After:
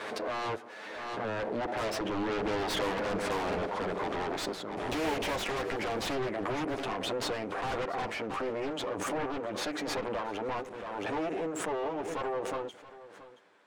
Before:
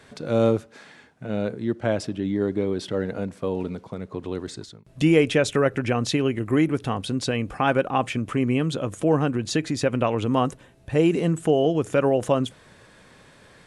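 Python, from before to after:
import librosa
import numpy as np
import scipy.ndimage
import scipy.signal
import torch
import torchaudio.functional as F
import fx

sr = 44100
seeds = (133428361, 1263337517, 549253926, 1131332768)

p1 = fx.lower_of_two(x, sr, delay_ms=9.8)
p2 = fx.doppler_pass(p1, sr, speed_mps=15, closest_m=10.0, pass_at_s=3.44)
p3 = scipy.signal.sosfilt(scipy.signal.butter(2, 420.0, 'highpass', fs=sr, output='sos'), p2)
p4 = fx.fold_sine(p3, sr, drive_db=17, ceiling_db=-25.0)
p5 = p3 + F.gain(torch.from_numpy(p4), -4.5).numpy()
p6 = fx.lowpass(p5, sr, hz=1400.0, slope=6)
p7 = p6 + fx.echo_single(p6, sr, ms=675, db=-17.0, dry=0)
y = fx.pre_swell(p7, sr, db_per_s=25.0)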